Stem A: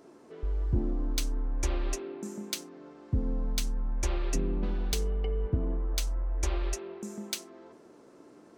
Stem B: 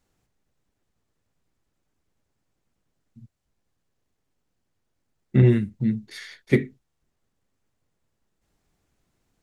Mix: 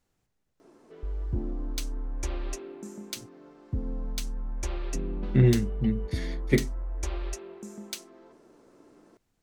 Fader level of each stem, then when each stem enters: −2.5, −3.5 decibels; 0.60, 0.00 seconds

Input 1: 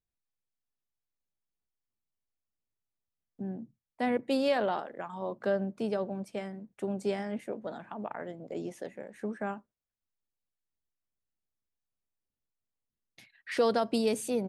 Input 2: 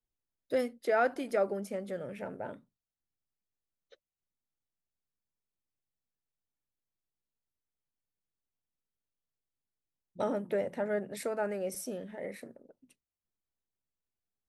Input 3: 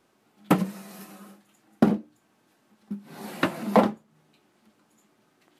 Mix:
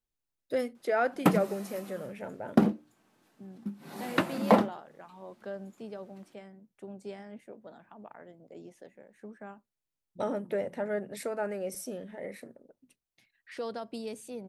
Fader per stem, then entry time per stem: −10.5, 0.0, −2.5 decibels; 0.00, 0.00, 0.75 seconds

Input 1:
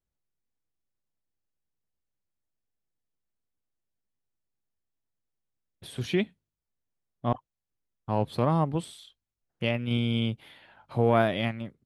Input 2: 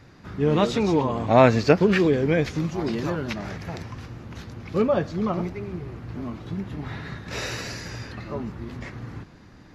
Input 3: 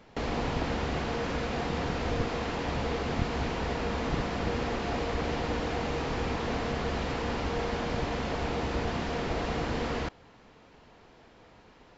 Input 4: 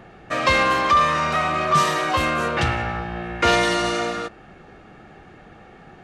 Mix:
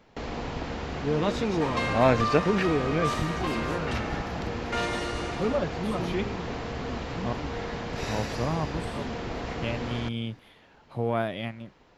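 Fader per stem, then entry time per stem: −5.0, −6.0, −3.0, −12.5 decibels; 0.00, 0.65, 0.00, 1.30 seconds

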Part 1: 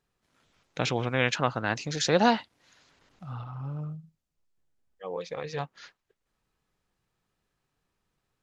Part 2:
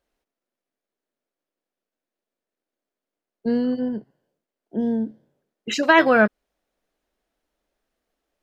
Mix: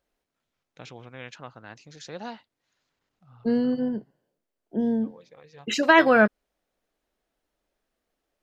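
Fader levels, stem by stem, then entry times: −15.5, −1.5 decibels; 0.00, 0.00 seconds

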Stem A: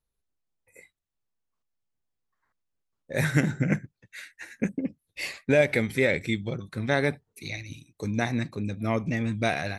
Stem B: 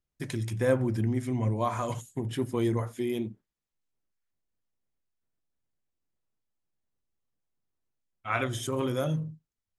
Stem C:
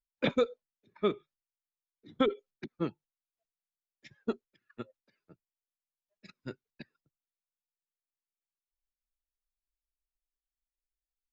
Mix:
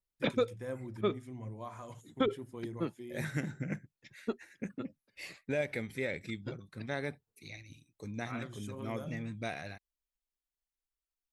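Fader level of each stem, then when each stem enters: −12.5, −15.5, −2.5 decibels; 0.00, 0.00, 0.00 seconds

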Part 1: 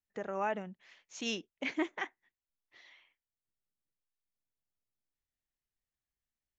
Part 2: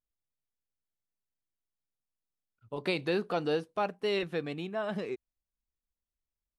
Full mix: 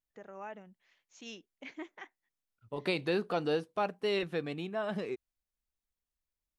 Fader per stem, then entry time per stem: −10.5, −1.0 decibels; 0.00, 0.00 seconds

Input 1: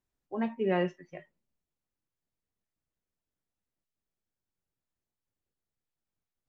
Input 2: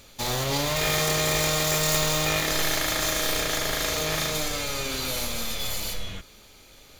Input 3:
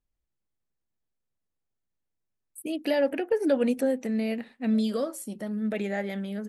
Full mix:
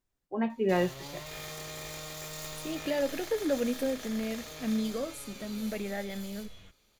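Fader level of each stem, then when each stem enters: +1.5, −17.5, −5.5 decibels; 0.00, 0.50, 0.00 seconds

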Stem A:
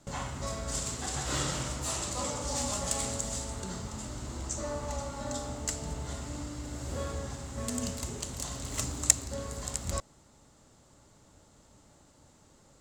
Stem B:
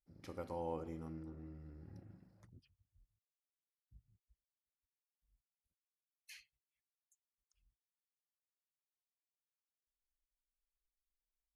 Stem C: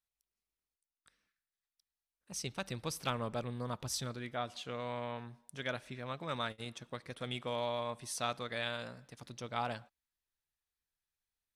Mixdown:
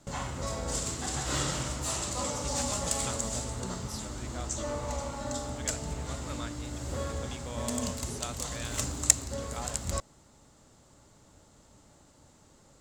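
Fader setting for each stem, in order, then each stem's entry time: +1.0, −0.5, −5.0 decibels; 0.00, 0.00, 0.00 seconds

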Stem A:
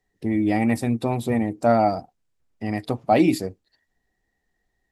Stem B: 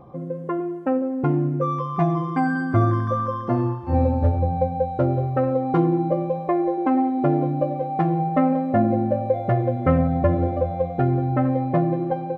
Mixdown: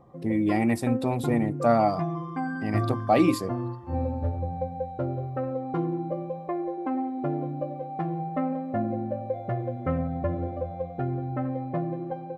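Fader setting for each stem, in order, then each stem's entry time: −3.0, −9.0 decibels; 0.00, 0.00 seconds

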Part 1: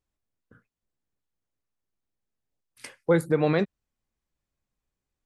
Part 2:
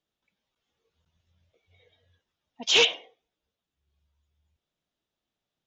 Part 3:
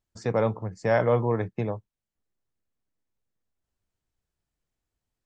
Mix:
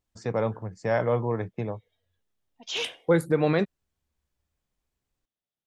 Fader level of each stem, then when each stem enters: 0.0, −11.0, −2.5 decibels; 0.00, 0.00, 0.00 seconds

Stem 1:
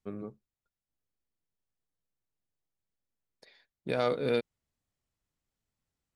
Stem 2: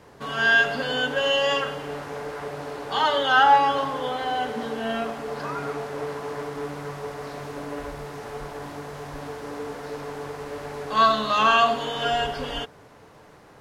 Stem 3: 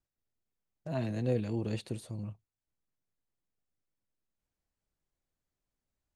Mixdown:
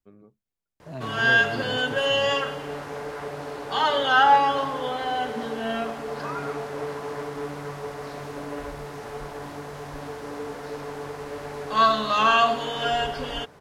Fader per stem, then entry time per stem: −12.0, −0.5, −2.5 decibels; 0.00, 0.80, 0.00 seconds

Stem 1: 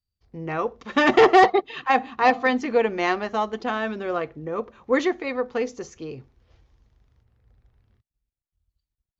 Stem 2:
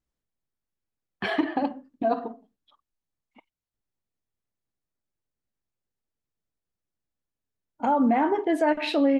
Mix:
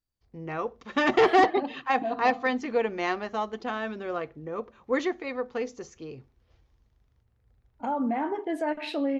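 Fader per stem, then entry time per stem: −5.5, −6.5 decibels; 0.00, 0.00 seconds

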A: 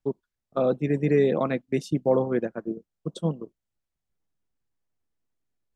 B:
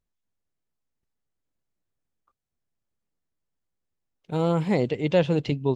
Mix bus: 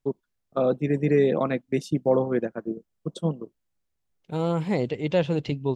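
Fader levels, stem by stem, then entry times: +0.5, −2.0 decibels; 0.00, 0.00 seconds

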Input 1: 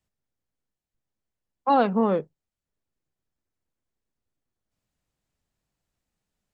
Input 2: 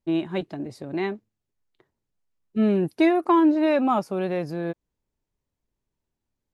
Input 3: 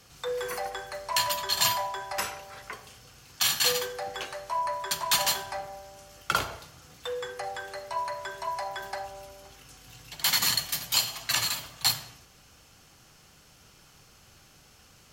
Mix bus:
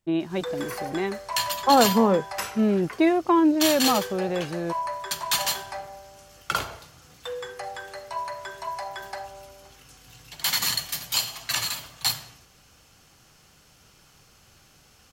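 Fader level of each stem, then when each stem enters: +2.5, −1.0, 0.0 decibels; 0.00, 0.00, 0.20 seconds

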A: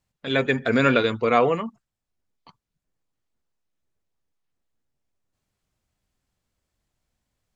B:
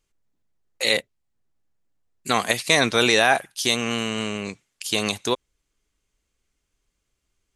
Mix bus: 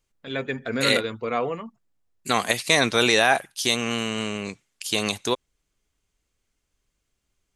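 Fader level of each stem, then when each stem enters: −7.0, −1.0 decibels; 0.00, 0.00 seconds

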